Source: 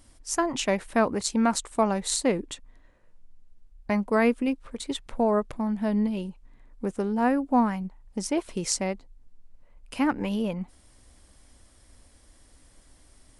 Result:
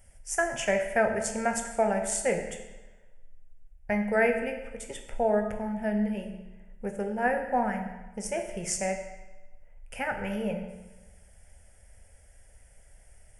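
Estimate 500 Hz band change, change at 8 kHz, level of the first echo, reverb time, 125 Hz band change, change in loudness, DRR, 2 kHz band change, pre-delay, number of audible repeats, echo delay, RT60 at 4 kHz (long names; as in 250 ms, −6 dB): 0.0 dB, −2.0 dB, no echo audible, 1.1 s, −4.0 dB, −2.5 dB, 4.0 dB, +3.5 dB, 14 ms, no echo audible, no echo audible, 1.0 s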